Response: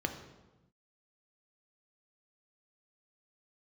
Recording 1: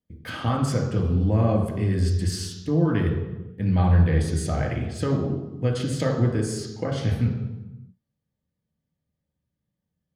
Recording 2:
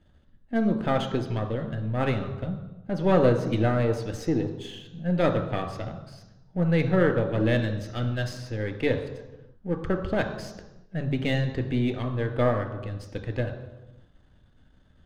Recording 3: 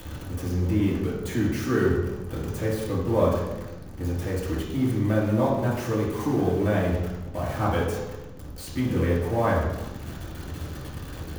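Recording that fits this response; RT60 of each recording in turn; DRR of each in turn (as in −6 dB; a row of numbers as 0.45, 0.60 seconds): 2; 1.0, 1.0, 1.0 seconds; −0.5, 5.0, −6.0 decibels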